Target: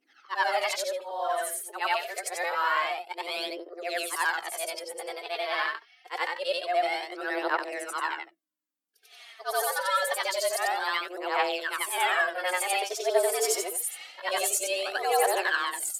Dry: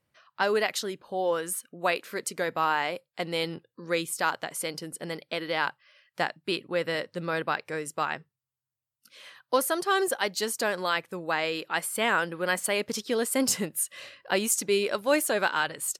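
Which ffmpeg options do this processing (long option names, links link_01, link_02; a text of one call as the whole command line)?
ffmpeg -i in.wav -af "afftfilt=real='re':imag='-im':win_size=8192:overlap=0.75,aphaser=in_gain=1:out_gain=1:delay=4.6:decay=0.61:speed=0.26:type=triangular,afreqshift=180,volume=2dB" out.wav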